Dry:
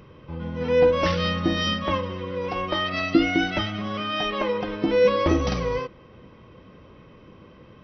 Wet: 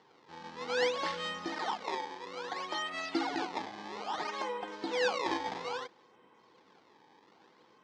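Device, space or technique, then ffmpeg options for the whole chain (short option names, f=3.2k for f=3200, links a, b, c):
circuit-bent sampling toy: -filter_complex "[0:a]acrusher=samples=18:mix=1:aa=0.000001:lfo=1:lforange=28.8:lforate=0.6,highpass=450,equalizer=f=580:t=q:w=4:g=-10,equalizer=f=850:t=q:w=4:g=8,equalizer=f=1.2k:t=q:w=4:g=-4,equalizer=f=2.6k:t=q:w=4:g=-5,lowpass=f=5.2k:w=0.5412,lowpass=f=5.2k:w=1.3066,asettb=1/sr,asplit=3[a][b][c];[a]atrim=end=1.464[d];[b]atrim=start=1.46:end=2.26,asetpts=PTS-STARTPTS,afade=t=in:d=0.004:c=qsin,afade=t=out:st=0.796:d=0.004:c=qsin,equalizer=f=130:w=1.2:g=-9[e];[c]atrim=start=2.256[f];[d][e]acrossfade=d=0.004:c1=hsin:c2=qsin[g];[g][f]acrossfade=d=0.004:c1=qsin:c2=hsin,volume=-7.5dB"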